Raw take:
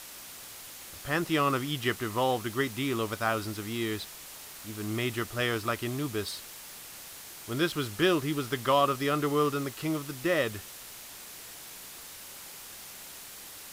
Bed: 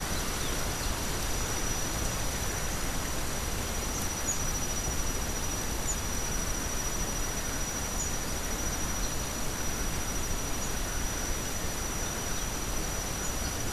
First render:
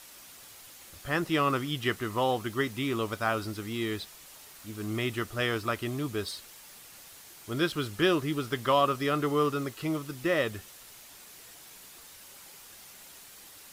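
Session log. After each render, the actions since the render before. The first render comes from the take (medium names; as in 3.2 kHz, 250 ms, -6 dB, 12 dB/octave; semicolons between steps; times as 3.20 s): noise reduction 6 dB, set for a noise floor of -46 dBFS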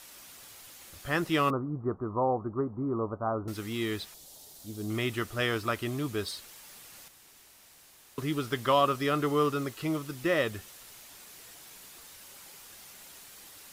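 1.50–3.48 s: steep low-pass 1.2 kHz 48 dB/octave; 4.14–4.90 s: high-order bell 1.7 kHz -12 dB; 7.08–8.18 s: room tone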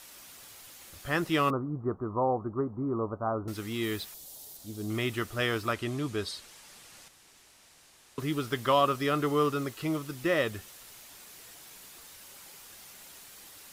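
3.83–4.57 s: treble shelf 12 kHz +10.5 dB; 5.73–8.20 s: low-pass 9.8 kHz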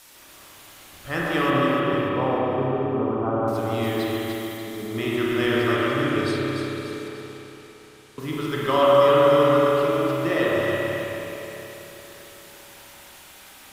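on a send: echo whose repeats swap between lows and highs 147 ms, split 1.5 kHz, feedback 68%, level -2 dB; on the sum: spring tank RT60 3.5 s, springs 30/53 ms, chirp 20 ms, DRR -5 dB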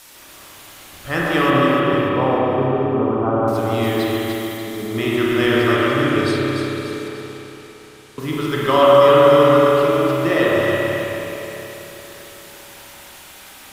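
trim +5.5 dB; peak limiter -1 dBFS, peak gain reduction 1 dB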